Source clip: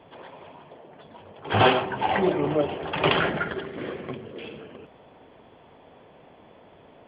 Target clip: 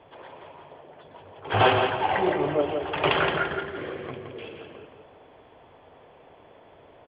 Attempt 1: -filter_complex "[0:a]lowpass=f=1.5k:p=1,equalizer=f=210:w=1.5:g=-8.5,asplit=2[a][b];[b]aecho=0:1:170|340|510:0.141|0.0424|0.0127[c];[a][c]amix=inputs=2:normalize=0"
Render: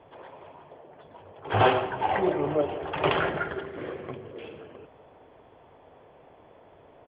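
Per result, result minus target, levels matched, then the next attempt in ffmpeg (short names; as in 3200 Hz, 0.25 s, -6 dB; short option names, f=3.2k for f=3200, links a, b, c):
echo-to-direct -11 dB; 4000 Hz band -3.5 dB
-filter_complex "[0:a]lowpass=f=1.5k:p=1,equalizer=f=210:w=1.5:g=-8.5,asplit=2[a][b];[b]aecho=0:1:170|340|510|680:0.501|0.15|0.0451|0.0135[c];[a][c]amix=inputs=2:normalize=0"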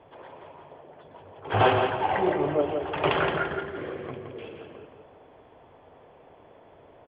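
4000 Hz band -3.5 dB
-filter_complex "[0:a]lowpass=f=3.9k:p=1,equalizer=f=210:w=1.5:g=-8.5,asplit=2[a][b];[b]aecho=0:1:170|340|510|680:0.501|0.15|0.0451|0.0135[c];[a][c]amix=inputs=2:normalize=0"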